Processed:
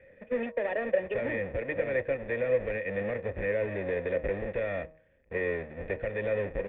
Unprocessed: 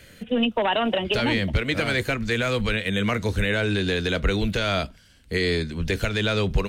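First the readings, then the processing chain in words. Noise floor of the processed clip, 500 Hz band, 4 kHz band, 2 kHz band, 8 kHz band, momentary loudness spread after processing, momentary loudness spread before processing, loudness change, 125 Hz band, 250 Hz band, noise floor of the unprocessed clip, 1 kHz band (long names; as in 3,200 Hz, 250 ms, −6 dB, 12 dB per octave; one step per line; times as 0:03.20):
−59 dBFS, −2.5 dB, below −25 dB, −9.5 dB, below −40 dB, 6 LU, 4 LU, −7.5 dB, −14.5 dB, −13.5 dB, −52 dBFS, −14.0 dB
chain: each half-wave held at its own peak
formant resonators in series e
hum removal 157.9 Hz, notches 8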